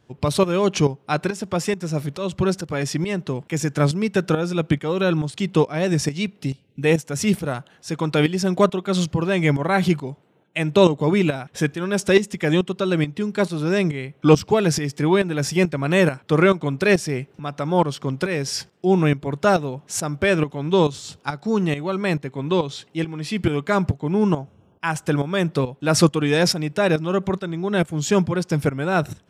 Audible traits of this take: tremolo saw up 2.3 Hz, depth 70%

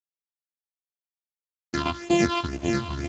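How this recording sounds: a buzz of ramps at a fixed pitch in blocks of 128 samples; phasing stages 6, 2 Hz, lowest notch 470–1500 Hz; a quantiser's noise floor 8-bit, dither none; Speex

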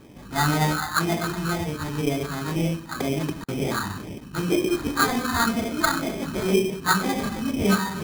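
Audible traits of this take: phasing stages 6, 2 Hz, lowest notch 490–1500 Hz; aliases and images of a low sample rate 2.8 kHz, jitter 0%

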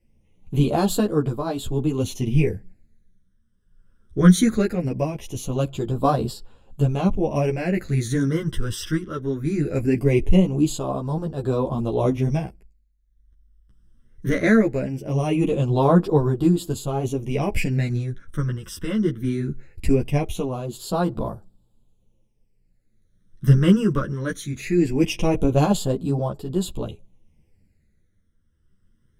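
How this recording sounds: phasing stages 12, 0.2 Hz, lowest notch 750–2100 Hz; tremolo triangle 0.52 Hz, depth 60%; a shimmering, thickened sound

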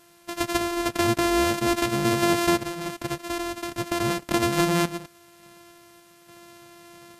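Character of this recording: a buzz of ramps at a fixed pitch in blocks of 128 samples; random-step tremolo, depth 70%; a quantiser's noise floor 10-bit, dither triangular; Vorbis

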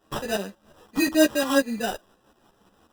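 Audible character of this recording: a quantiser's noise floor 10-bit, dither none; tremolo saw up 5.6 Hz, depth 70%; aliases and images of a low sample rate 2.2 kHz, jitter 0%; a shimmering, thickened sound

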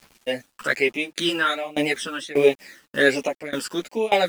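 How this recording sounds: phasing stages 12, 1.3 Hz, lowest notch 680–1500 Hz; a quantiser's noise floor 8-bit, dither none; tremolo saw down 1.7 Hz, depth 95%; a shimmering, thickened sound

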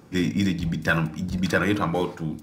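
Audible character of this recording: noise floor -46 dBFS; spectral tilt -5.0 dB/octave

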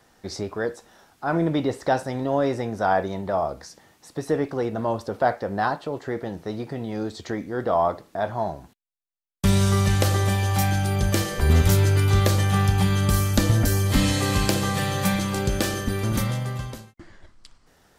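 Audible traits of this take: noise floor -61 dBFS; spectral tilt -5.5 dB/octave

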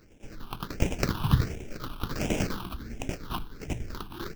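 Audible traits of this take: aliases and images of a low sample rate 1.9 kHz, jitter 20%; tremolo saw down 10 Hz, depth 60%; phasing stages 6, 1.4 Hz, lowest notch 520–1200 Hz

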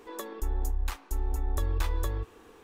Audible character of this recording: noise floor -55 dBFS; spectral tilt -5.0 dB/octave

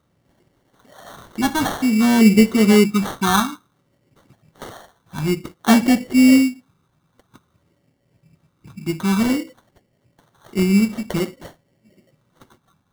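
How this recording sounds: phasing stages 8, 0.53 Hz, lowest notch 510–1100 Hz; aliases and images of a low sample rate 2.5 kHz, jitter 0%

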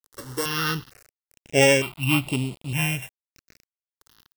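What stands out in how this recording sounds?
a buzz of ramps at a fixed pitch in blocks of 16 samples; tremolo triangle 1.5 Hz, depth 60%; a quantiser's noise floor 8-bit, dither none; notches that jump at a steady rate 2.2 Hz 670–5900 Hz

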